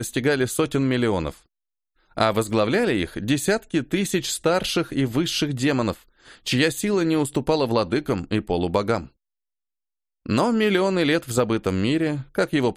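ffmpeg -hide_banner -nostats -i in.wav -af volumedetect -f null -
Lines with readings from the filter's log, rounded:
mean_volume: -23.0 dB
max_volume: -4.2 dB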